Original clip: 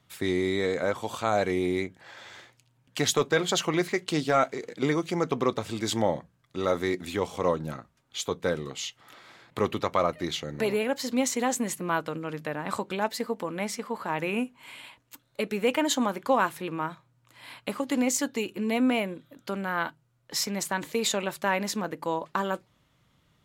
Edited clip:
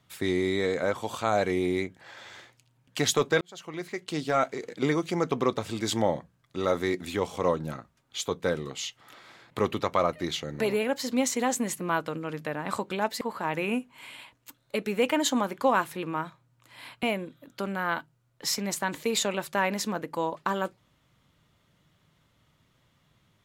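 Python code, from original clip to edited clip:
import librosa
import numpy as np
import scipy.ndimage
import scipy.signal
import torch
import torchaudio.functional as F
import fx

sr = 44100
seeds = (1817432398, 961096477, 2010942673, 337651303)

y = fx.edit(x, sr, fx.fade_in_span(start_s=3.41, length_s=1.22),
    fx.cut(start_s=13.21, length_s=0.65),
    fx.cut(start_s=17.68, length_s=1.24), tone=tone)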